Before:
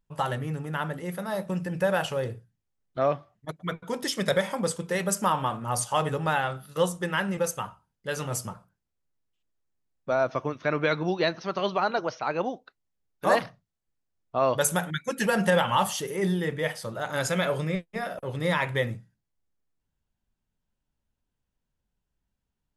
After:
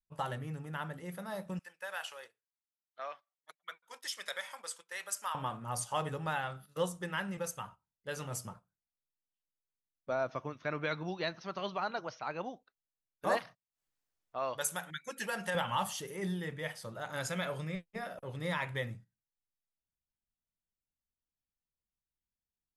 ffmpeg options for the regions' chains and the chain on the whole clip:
-filter_complex "[0:a]asettb=1/sr,asplit=3[a][b][c];[a]atrim=end=1.594[d];[b]atrim=start=1.59:end=5.35,asetpts=PTS-STARTPTS,afade=t=in:d=0.004:c=qsin,afade=t=out:st=3.756:d=0.004:c=qsin,highpass=1.2k,agate=range=-6dB:threshold=-54dB:ratio=16:release=100:detection=peak[e];[c]atrim=start=5.346[f];[d][e]acrossfade=d=0.004:c1=hsin:c2=qsin[g];[g][f]acrossfade=d=0.004:c1=qsin:c2=hsin,asettb=1/sr,asplit=3[h][i][j];[h]atrim=end=13.374[k];[i]atrim=start=13.37:end=15.55,asetpts=PTS-STARTPTS,afade=t=in:d=0.004:c=qsin,afade=t=out:st=2.176:d=0.004:c=qsin,agate=range=-28dB:threshold=-53dB:ratio=16:release=100:detection=peak,lowshelf=f=450:g=-11.5,acompressor=mode=upward:threshold=-34dB:ratio=2.5:attack=3.2:release=140:knee=2.83:detection=peak[l];[j]atrim=start=15.546[m];[k][l]acrossfade=d=0.004:c1=hsin:c2=qsin[n];[n][m]acrossfade=d=0.004:c1=qsin:c2=hsin,agate=range=-9dB:threshold=-42dB:ratio=16:detection=peak,adynamicequalizer=threshold=0.0112:dfrequency=400:dqfactor=1:tfrequency=400:tqfactor=1:attack=5:release=100:ratio=0.375:range=3:mode=cutabove:tftype=bell,volume=-8.5dB"

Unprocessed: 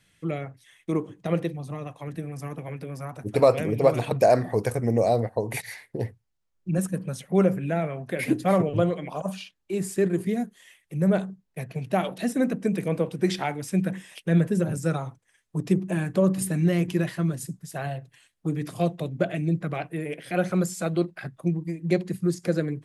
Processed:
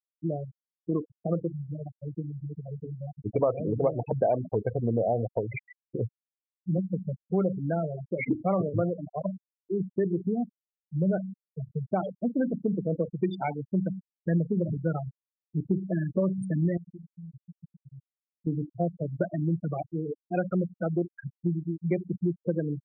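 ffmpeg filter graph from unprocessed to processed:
-filter_complex "[0:a]asettb=1/sr,asplit=3[a][b][c];[a]atrim=end=16.774[d];[b]atrim=start=16.77:end=18.47,asetpts=PTS-STARTPTS,afade=t=in:d=0.004:c=qsin,afade=t=out:st=1.696:d=0.004:c=qsin,acompressor=threshold=-39dB:ratio=6:attack=3.2:release=140:knee=1:detection=peak,lowshelf=f=67:g=7[e];[c]atrim=start=18.466[f];[d][e]acrossfade=d=0.004:c1=hsin:c2=qsin[g];[g][f]acrossfade=d=0.004:c1=qsin:c2=hsin,lowpass=6.8k,afftfilt=real='re*gte(hypot(re,im),0.1)':imag='im*gte(hypot(re,im),0.1)':win_size=1024:overlap=0.75,acompressor=threshold=-24dB:ratio=2.5"

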